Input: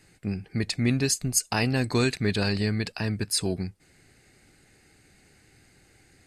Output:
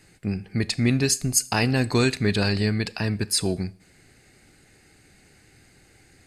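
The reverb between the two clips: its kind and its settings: Schroeder reverb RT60 0.5 s, combs from 27 ms, DRR 18.5 dB; trim +3 dB

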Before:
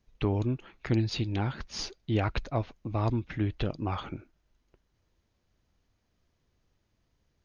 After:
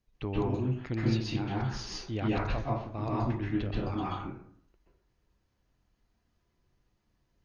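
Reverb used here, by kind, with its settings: plate-style reverb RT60 0.61 s, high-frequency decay 0.5×, pre-delay 115 ms, DRR -6 dB; trim -7.5 dB

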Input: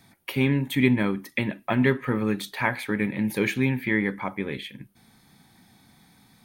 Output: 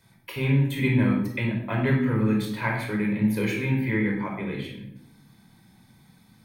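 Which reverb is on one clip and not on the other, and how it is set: simulated room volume 1900 m³, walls furnished, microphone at 5 m; trim -7 dB

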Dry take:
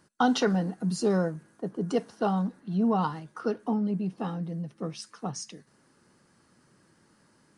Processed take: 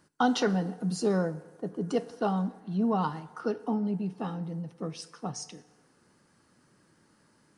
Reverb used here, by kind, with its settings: FDN reverb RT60 1.3 s, low-frequency decay 0.75×, high-frequency decay 0.7×, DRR 15 dB; trim -1.5 dB

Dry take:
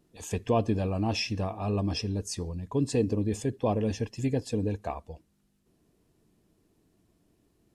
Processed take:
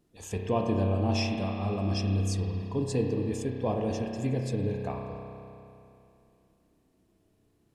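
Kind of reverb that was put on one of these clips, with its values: spring tank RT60 2.8 s, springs 31 ms, chirp 25 ms, DRR 1 dB; trim -3 dB

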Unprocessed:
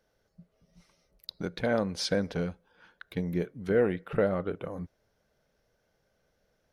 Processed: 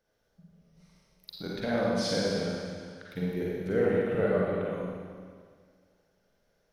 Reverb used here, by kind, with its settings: Schroeder reverb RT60 1.9 s, DRR -5.5 dB; trim -5.5 dB

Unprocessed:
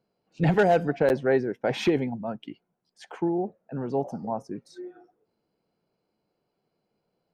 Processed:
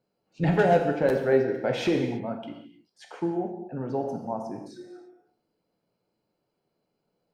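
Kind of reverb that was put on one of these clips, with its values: gated-style reverb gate 350 ms falling, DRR 2.5 dB; trim -2.5 dB

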